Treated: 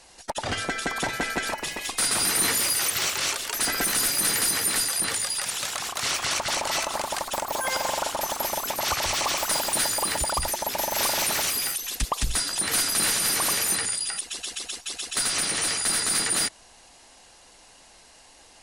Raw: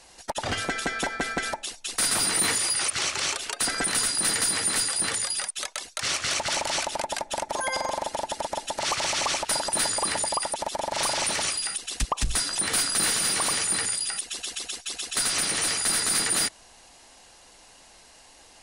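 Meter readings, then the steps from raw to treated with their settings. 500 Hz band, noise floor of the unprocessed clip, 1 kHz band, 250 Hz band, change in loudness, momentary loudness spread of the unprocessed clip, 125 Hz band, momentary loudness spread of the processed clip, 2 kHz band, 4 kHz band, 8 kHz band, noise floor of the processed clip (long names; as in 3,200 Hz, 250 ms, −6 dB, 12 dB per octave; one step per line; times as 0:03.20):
+0.5 dB, −53 dBFS, +1.0 dB, +0.5 dB, +1.0 dB, 9 LU, +1.0 dB, 8 LU, +1.0 dB, +0.5 dB, +0.5 dB, −53 dBFS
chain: delay with pitch and tempo change per echo 676 ms, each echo +4 semitones, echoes 2, each echo −6 dB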